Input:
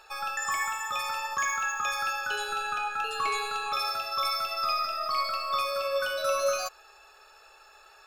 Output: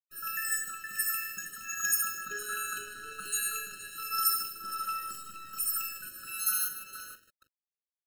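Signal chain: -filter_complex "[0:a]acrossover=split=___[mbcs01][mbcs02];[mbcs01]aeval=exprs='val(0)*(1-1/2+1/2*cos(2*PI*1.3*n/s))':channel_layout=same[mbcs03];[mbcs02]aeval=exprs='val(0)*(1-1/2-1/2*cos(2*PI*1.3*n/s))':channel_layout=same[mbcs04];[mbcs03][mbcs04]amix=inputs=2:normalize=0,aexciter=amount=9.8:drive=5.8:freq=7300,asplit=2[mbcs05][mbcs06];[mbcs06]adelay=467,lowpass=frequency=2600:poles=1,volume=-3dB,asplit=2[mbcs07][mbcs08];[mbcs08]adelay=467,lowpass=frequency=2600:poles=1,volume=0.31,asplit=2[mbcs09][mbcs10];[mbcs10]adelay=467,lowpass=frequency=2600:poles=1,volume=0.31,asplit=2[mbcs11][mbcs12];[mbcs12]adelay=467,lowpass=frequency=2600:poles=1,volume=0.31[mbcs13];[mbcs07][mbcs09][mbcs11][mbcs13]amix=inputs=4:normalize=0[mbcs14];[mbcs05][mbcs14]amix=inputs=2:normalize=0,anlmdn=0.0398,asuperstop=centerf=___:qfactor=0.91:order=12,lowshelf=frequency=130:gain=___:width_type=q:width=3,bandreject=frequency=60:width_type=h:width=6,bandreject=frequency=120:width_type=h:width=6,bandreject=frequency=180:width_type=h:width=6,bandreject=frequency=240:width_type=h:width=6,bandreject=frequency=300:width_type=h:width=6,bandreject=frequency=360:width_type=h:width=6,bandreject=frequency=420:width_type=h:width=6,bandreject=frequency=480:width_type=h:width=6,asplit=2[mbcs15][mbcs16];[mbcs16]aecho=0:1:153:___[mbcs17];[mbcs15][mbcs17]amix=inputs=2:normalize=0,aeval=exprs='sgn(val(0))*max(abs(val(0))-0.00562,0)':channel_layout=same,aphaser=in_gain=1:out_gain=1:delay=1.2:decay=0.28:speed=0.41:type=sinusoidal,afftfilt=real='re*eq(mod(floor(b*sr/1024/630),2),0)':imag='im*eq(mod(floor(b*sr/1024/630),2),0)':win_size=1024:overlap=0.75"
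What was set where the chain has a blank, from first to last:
750, 720, -7.5, 0.335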